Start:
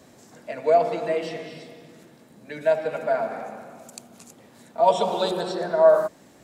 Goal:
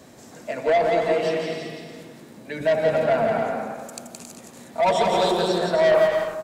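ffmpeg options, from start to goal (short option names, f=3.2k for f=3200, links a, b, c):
-filter_complex "[0:a]asettb=1/sr,asplit=3[a][b][c];[a]atrim=end=2.604[d];[b]atrim=start=2.6:end=3.42,asetpts=PTS-STARTPTS,afade=t=in:d=0.004:c=qsin,afade=t=out:st=0.816:d=0.004:c=qsin,equalizer=f=73:w=0.37:g=12[e];[c]atrim=start=3.416[f];[d][e]acrossfade=d=0.004:c1=hsin:c2=qsin[g];[g][f]acrossfade=d=0.004:c1=qsin:c2=hsin,asoftclip=type=tanh:threshold=-19dB,aecho=1:1:170|272|333.2|369.9|392:0.631|0.398|0.251|0.158|0.1,volume=4dB"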